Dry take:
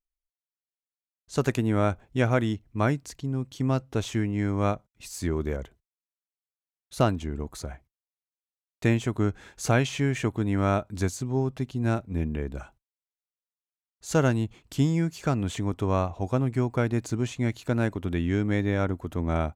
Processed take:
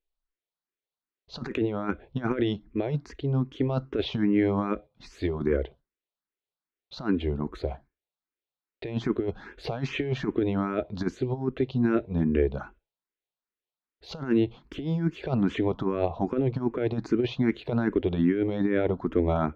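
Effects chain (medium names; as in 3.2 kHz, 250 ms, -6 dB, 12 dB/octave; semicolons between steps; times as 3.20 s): fifteen-band graphic EQ 100 Hz -10 dB, 400 Hz +6 dB, 4 kHz +6 dB, 10 kHz -5 dB; compressor with a negative ratio -26 dBFS, ratio -0.5; distance through air 300 m; on a send at -19.5 dB: reverberation RT60 0.30 s, pre-delay 3 ms; on the sum: barber-pole phaser +2.5 Hz; trim +5.5 dB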